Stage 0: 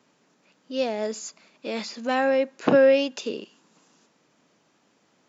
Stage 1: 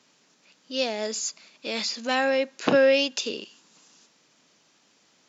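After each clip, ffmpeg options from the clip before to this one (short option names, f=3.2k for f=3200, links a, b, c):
-af "equalizer=f=5k:w=0.45:g=11.5,volume=-3dB"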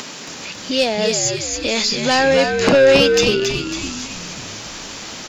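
-filter_complex "[0:a]acompressor=mode=upward:threshold=-26dB:ratio=2.5,aeval=exprs='0.501*sin(PI/2*2.24*val(0)/0.501)':c=same,asplit=8[a][b][c][d][e][f][g][h];[b]adelay=275,afreqshift=-72,volume=-5dB[i];[c]adelay=550,afreqshift=-144,volume=-10.7dB[j];[d]adelay=825,afreqshift=-216,volume=-16.4dB[k];[e]adelay=1100,afreqshift=-288,volume=-22dB[l];[f]adelay=1375,afreqshift=-360,volume=-27.7dB[m];[g]adelay=1650,afreqshift=-432,volume=-33.4dB[n];[h]adelay=1925,afreqshift=-504,volume=-39.1dB[o];[a][i][j][k][l][m][n][o]amix=inputs=8:normalize=0,volume=-1dB"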